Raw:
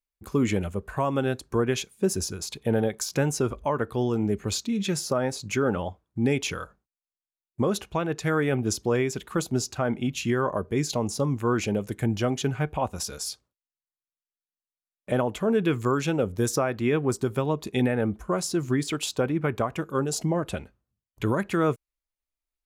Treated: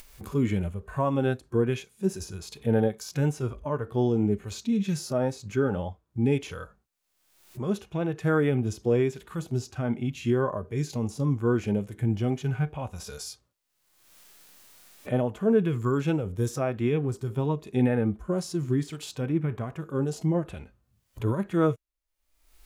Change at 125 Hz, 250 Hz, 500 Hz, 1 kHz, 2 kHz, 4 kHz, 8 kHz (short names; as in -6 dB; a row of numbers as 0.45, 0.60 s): +1.5, -0.5, -1.5, -5.0, -5.5, -8.5, -10.0 dB